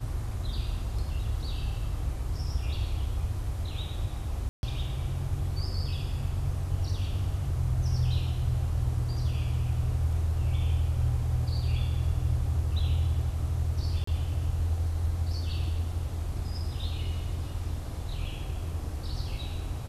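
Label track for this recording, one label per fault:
4.490000	4.630000	drop-out 141 ms
14.040000	14.070000	drop-out 34 ms

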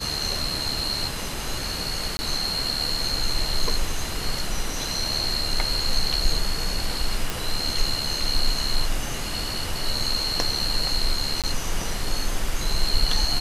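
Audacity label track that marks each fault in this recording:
2.170000	2.190000	drop-out 20 ms
7.300000	7.300000	click
11.420000	11.440000	drop-out 17 ms

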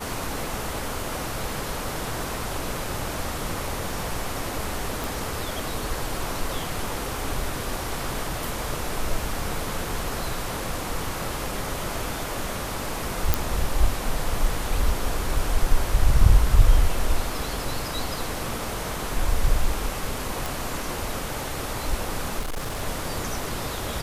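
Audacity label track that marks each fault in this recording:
5.040000	5.040000	click
13.340000	13.340000	click
20.460000	20.460000	click
22.390000	22.820000	clipping −25.5 dBFS

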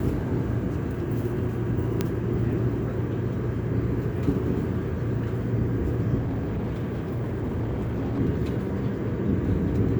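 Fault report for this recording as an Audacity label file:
2.010000	2.010000	click −10 dBFS
6.190000	8.200000	clipping −24.5 dBFS

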